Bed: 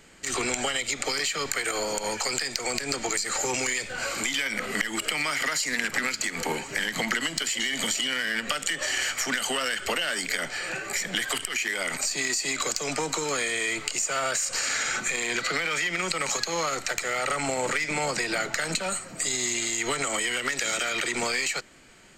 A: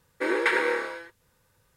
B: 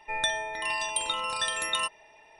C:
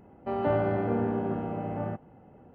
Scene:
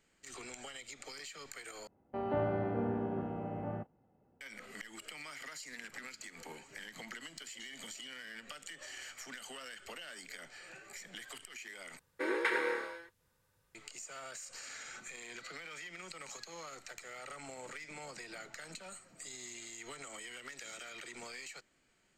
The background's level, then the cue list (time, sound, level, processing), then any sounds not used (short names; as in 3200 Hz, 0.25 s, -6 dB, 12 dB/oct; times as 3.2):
bed -20 dB
1.87 replace with C -7 dB + gate -46 dBFS, range -10 dB
11.99 replace with A -8.5 dB
not used: B